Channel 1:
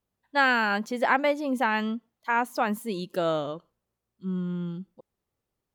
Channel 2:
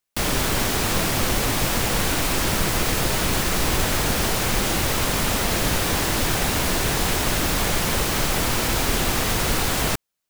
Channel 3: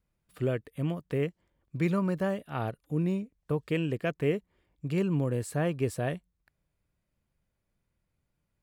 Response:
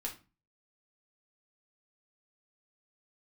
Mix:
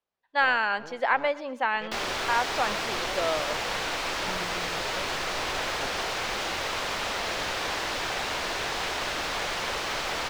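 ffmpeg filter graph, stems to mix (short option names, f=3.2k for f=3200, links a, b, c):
-filter_complex "[0:a]volume=-0.5dB,asplit=2[a][b];[b]volume=-20dB[c];[1:a]adelay=1750,volume=-4dB[d];[2:a]afwtdn=0.0126,aeval=exprs='abs(val(0))':c=same,volume=-4.5dB,asplit=2[e][f];[f]volume=-18dB[g];[c][g]amix=inputs=2:normalize=0,aecho=0:1:121|242|363|484|605|726:1|0.45|0.202|0.0911|0.041|0.0185[h];[a][d][e][h]amix=inputs=4:normalize=0,acrossover=split=430 5900:gain=0.158 1 0.1[i][j][k];[i][j][k]amix=inputs=3:normalize=0"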